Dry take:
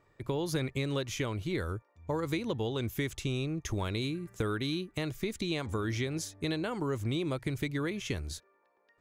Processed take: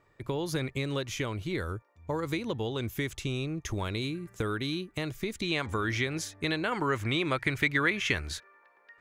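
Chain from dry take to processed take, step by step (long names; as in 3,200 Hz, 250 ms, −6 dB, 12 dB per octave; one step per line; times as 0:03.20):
parametric band 1,800 Hz +2.5 dB 2.1 octaves, from 0:05.43 +9 dB, from 0:06.72 +15 dB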